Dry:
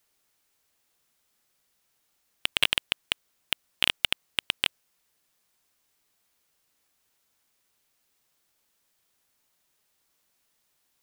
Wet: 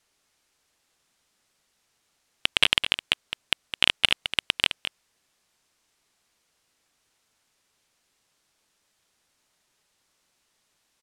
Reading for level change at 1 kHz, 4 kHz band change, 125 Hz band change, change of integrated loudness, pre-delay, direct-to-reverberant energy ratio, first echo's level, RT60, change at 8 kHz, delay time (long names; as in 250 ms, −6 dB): +4.5 dB, +4.5 dB, +4.5 dB, +4.0 dB, no reverb audible, no reverb audible, −10.5 dB, no reverb audible, +1.0 dB, 211 ms